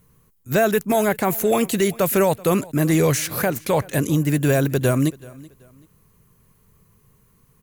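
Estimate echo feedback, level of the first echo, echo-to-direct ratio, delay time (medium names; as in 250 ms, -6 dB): 30%, -22.0 dB, -21.5 dB, 381 ms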